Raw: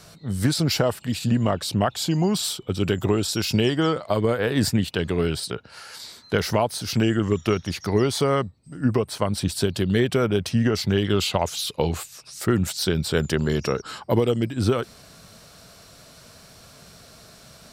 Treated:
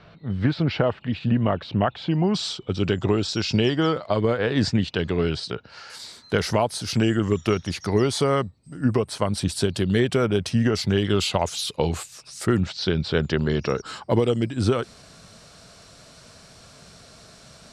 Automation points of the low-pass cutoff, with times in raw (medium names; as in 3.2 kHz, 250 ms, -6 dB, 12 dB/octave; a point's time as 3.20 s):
low-pass 24 dB/octave
3.2 kHz
from 2.34 s 6 kHz
from 5.90 s 11 kHz
from 12.60 s 4.8 kHz
from 13.70 s 9.6 kHz